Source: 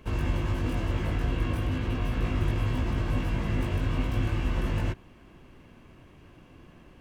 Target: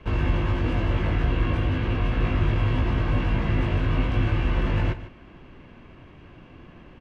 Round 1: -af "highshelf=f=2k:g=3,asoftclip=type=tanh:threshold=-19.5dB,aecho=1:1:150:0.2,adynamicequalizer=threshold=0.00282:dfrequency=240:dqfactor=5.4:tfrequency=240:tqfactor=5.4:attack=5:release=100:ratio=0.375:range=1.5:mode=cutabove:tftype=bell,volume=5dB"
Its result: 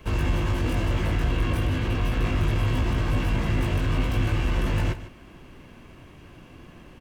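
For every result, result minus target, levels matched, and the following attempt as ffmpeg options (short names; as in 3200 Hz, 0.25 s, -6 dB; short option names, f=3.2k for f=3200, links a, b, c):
soft clip: distortion +11 dB; 4000 Hz band +3.0 dB
-af "highshelf=f=2k:g=3,asoftclip=type=tanh:threshold=-13dB,aecho=1:1:150:0.2,adynamicequalizer=threshold=0.00282:dfrequency=240:dqfactor=5.4:tfrequency=240:tqfactor=5.4:attack=5:release=100:ratio=0.375:range=1.5:mode=cutabove:tftype=bell,volume=5dB"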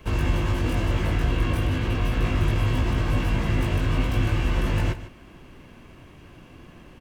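4000 Hz band +3.0 dB
-af "highshelf=f=2k:g=3,asoftclip=type=tanh:threshold=-13dB,aecho=1:1:150:0.2,adynamicequalizer=threshold=0.00282:dfrequency=240:dqfactor=5.4:tfrequency=240:tqfactor=5.4:attack=5:release=100:ratio=0.375:range=1.5:mode=cutabove:tftype=bell,lowpass=3.2k,volume=5dB"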